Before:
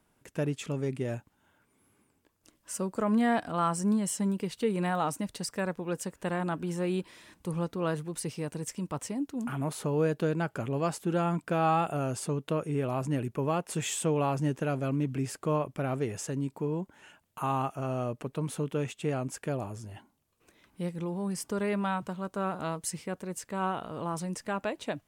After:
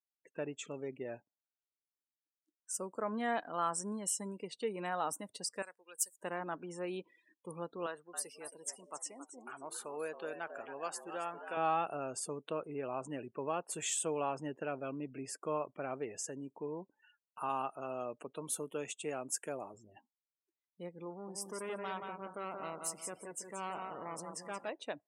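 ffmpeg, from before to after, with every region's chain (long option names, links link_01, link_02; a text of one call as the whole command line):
ffmpeg -i in.wav -filter_complex "[0:a]asettb=1/sr,asplit=3[link_01][link_02][link_03];[link_01]atrim=end=5.624[link_04];[link_02]atrim=start=5.62:end=6.17,asetpts=PTS-STARTPTS,afade=type=in:duration=0.004:curve=qsin,afade=type=out:start_time=0.546:duration=0.004:curve=qsin,aderivative,acontrast=71[link_05];[link_03]atrim=start=6.166[link_06];[link_04][link_05]acrossfade=duration=0.004:curve1=hsin:curve2=qsin[link_07];[link_07][link_06]acrossfade=duration=0.004:curve1=qsin:curve2=hsin,asettb=1/sr,asplit=3[link_08][link_09][link_10];[link_08]atrim=end=7.864[link_11];[link_09]atrim=start=7.86:end=11.57,asetpts=PTS-STARTPTS,afade=type=in:duration=0.004:curve=qsin,afade=type=out:start_time=3.706:duration=0.004:curve=qsin,highpass=frequency=790:poles=1,asplit=7[link_12][link_13][link_14][link_15][link_16][link_17][link_18];[link_13]adelay=273,afreqshift=100,volume=-9dB[link_19];[link_14]adelay=546,afreqshift=200,volume=-14.7dB[link_20];[link_15]adelay=819,afreqshift=300,volume=-20.4dB[link_21];[link_16]adelay=1092,afreqshift=400,volume=-26dB[link_22];[link_17]adelay=1365,afreqshift=500,volume=-31.7dB[link_23];[link_18]adelay=1638,afreqshift=600,volume=-37.4dB[link_24];[link_12][link_19][link_20][link_21][link_22][link_23][link_24]amix=inputs=7:normalize=0,atrim=end_sample=163611[link_25];[link_10]atrim=start=11.566[link_26];[link_11][link_25]acrossfade=duration=0.004:curve1=hsin:curve2=qsin[link_27];[link_27][link_26]acrossfade=duration=0.004:curve1=qsin:curve2=hsin,asettb=1/sr,asplit=3[link_28][link_29][link_30];[link_28]atrim=end=17.494[link_31];[link_29]atrim=start=17.49:end=19.74,asetpts=PTS-STARTPTS,afade=type=in:duration=0.004:curve=qsin,afade=type=out:start_time=2.246:duration=0.004:curve=qsin,highpass=120,highshelf=frequency=4800:gain=8.5[link_32];[link_30]atrim=start=19.736[link_33];[link_31][link_32]acrossfade=duration=0.004:curve1=hsin:curve2=qsin[link_34];[link_34][link_33]acrossfade=duration=0.004:curve1=qsin:curve2=hsin,asettb=1/sr,asplit=3[link_35][link_36][link_37];[link_35]atrim=end=21.104[link_38];[link_36]atrim=start=21.1:end=24.69,asetpts=PTS-STARTPTS,afade=type=in:duration=0.004:curve=qsin,afade=type=out:start_time=3.586:duration=0.004:curve=qsin,aeval=exprs='val(0)+0.5*0.00501*sgn(val(0))':channel_layout=same,aecho=1:1:176|352|528|704:0.562|0.197|0.0689|0.0241,atrim=end_sample=158319,aeval=exprs='(tanh(22.4*val(0)+0.55)-tanh(0.55))/22.4':channel_layout=same[link_39];[link_37]atrim=start=24.686[link_40];[link_38][link_39]acrossfade=duration=0.004:curve1=hsin:curve2=qsin[link_41];[link_41][link_40]acrossfade=duration=0.004:curve1=qsin:curve2=hsin,highpass=120,afftdn=noise_reduction=36:noise_floor=-46,bass=frequency=250:gain=-14,treble=frequency=4000:gain=5,volume=-5.5dB" out.wav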